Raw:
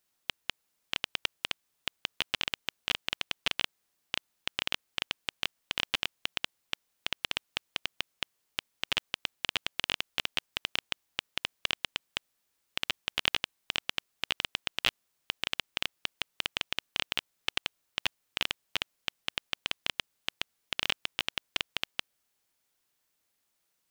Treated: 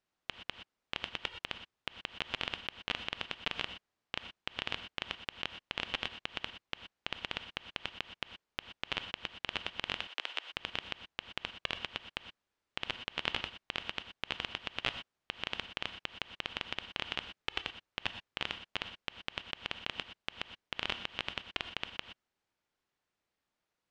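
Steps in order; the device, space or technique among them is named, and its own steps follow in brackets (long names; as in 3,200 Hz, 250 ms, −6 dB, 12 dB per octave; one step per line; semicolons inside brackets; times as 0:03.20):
0:10.00–0:10.50: Bessel high-pass filter 580 Hz, order 8
through cloth (low-pass filter 6,900 Hz 12 dB per octave; high-shelf EQ 3,600 Hz −13 dB)
reverb whose tail is shaped and stops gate 140 ms rising, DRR 9.5 dB
level −1 dB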